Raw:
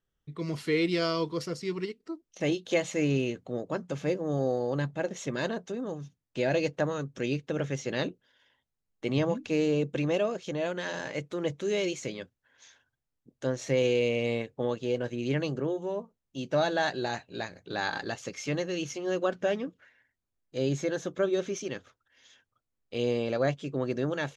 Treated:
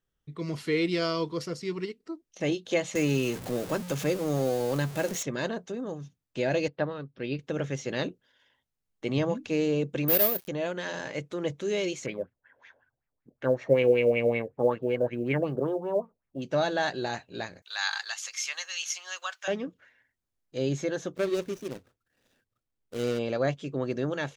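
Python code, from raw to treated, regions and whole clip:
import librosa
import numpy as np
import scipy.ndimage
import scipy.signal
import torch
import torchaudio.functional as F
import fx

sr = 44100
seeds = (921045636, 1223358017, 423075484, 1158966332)

y = fx.chain(x, sr, fx.zero_step(step_db=-38.0),
    fx.high_shelf(hz=4700.0, db=10.0),
    fx.band_squash(depth_pct=40), at=(2.95, 5.23))
y = fx.chain(y, sr, fx.steep_lowpass(hz=5000.0, slope=72),
    fx.upward_expand(threshold_db=-44.0, expansion=1.5), at=(6.68, 7.39))
y = fx.chain(y, sr, fx.dead_time(dead_ms=0.19),
    fx.peak_eq(hz=4600.0, db=4.5, octaves=0.65),
    fx.resample_bad(factor=3, down='none', up='zero_stuff'), at=(10.08, 10.48))
y = fx.chain(y, sr, fx.filter_lfo_lowpass(shape='sine', hz=5.3, low_hz=550.0, high_hz=2300.0, q=3.8),
    fx.quant_float(bits=6), at=(12.06, 16.42))
y = fx.chain(y, sr, fx.highpass(hz=910.0, slope=24),
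    fx.tilt_eq(slope=3.5), at=(17.62, 19.48))
y = fx.chain(y, sr, fx.median_filter(points=41),
    fx.high_shelf(hz=2800.0, db=8.5), at=(21.16, 23.19))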